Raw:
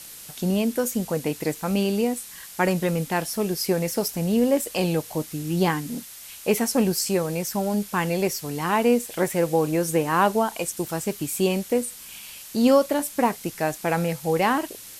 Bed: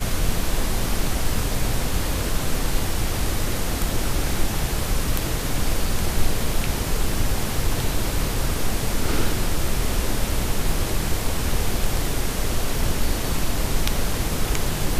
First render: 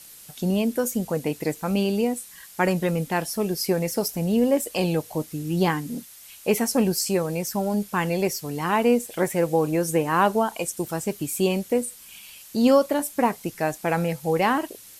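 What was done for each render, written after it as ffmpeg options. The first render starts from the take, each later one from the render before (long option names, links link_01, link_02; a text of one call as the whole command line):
ffmpeg -i in.wav -af "afftdn=noise_reduction=6:noise_floor=-42" out.wav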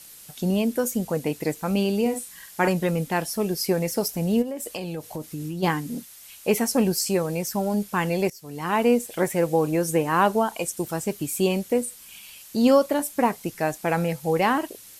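ffmpeg -i in.wav -filter_complex "[0:a]asettb=1/sr,asplit=3[link_01][link_02][link_03];[link_01]atrim=end=2.014[link_04];[link_02]atrim=start=2.01:end=2.68,asetpts=PTS-STARTPTS,afade=type=in:duration=0.004:curve=qsin,afade=type=out:start_time=0.666:duration=0.004:curve=qsin,asplit=2[link_05][link_06];[link_06]adelay=47,volume=-6.5dB[link_07];[link_05][link_07]amix=inputs=2:normalize=0,atrim=end_sample=29547[link_08];[link_03]atrim=start=2.676[link_09];[link_04][link_08]acrossfade=duration=0.004:curve1=hsin:curve2=qsin[link_10];[link_10][link_09]acrossfade=duration=0.004:curve1=qsin:curve2=hsin,asplit=3[link_11][link_12][link_13];[link_11]afade=type=out:start_time=4.41:duration=0.02[link_14];[link_12]acompressor=threshold=-27dB:ratio=12:attack=3.2:release=140:knee=1:detection=peak,afade=type=in:start_time=4.41:duration=0.02,afade=type=out:start_time=5.62:duration=0.02[link_15];[link_13]afade=type=in:start_time=5.62:duration=0.02[link_16];[link_14][link_15][link_16]amix=inputs=3:normalize=0,asplit=2[link_17][link_18];[link_17]atrim=end=8.3,asetpts=PTS-STARTPTS,afade=type=out:start_time=8.296:duration=0.004:curve=hsin:silence=0.105925[link_19];[link_18]atrim=start=8.3,asetpts=PTS-STARTPTS,afade=type=in:duration=0.51:silence=0.105925[link_20];[link_19][link_20]concat=n=2:v=0:a=1" out.wav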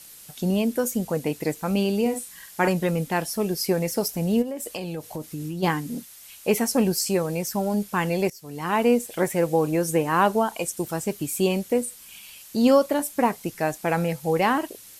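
ffmpeg -i in.wav -af anull out.wav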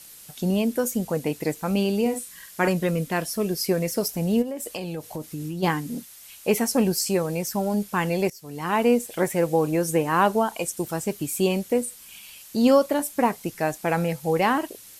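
ffmpeg -i in.wav -filter_complex "[0:a]asettb=1/sr,asplit=3[link_01][link_02][link_03];[link_01]atrim=end=2.154[link_04];[link_02]atrim=start=2.15:end=4.05,asetpts=PTS-STARTPTS,afade=type=in:duration=0.004:curve=qsin,afade=type=out:start_time=1.896:duration=0.004:curve=qsin,bandreject=frequency=830:width=6[link_05];[link_03]atrim=start=4.046[link_06];[link_04][link_05]acrossfade=duration=0.004:curve1=hsin:curve2=qsin[link_07];[link_07][link_06]acrossfade=duration=0.004:curve1=qsin:curve2=hsin" out.wav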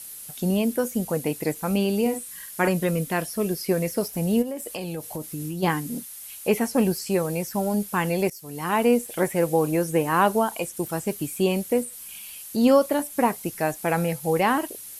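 ffmpeg -i in.wav -filter_complex "[0:a]acrossover=split=3800[link_01][link_02];[link_02]acompressor=threshold=-41dB:ratio=4:attack=1:release=60[link_03];[link_01][link_03]amix=inputs=2:normalize=0,equalizer=frequency=11000:width=1.3:gain=10.5" out.wav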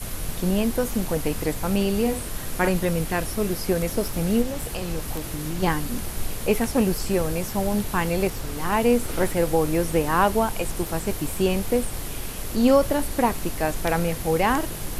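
ffmpeg -i in.wav -i bed.wav -filter_complex "[1:a]volume=-9dB[link_01];[0:a][link_01]amix=inputs=2:normalize=0" out.wav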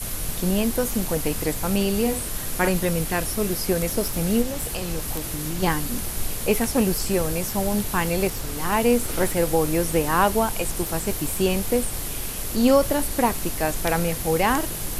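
ffmpeg -i in.wav -af "highshelf=frequency=4100:gain=6" out.wav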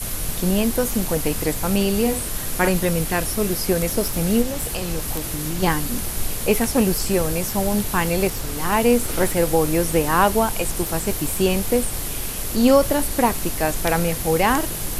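ffmpeg -i in.wav -af "volume=2.5dB" out.wav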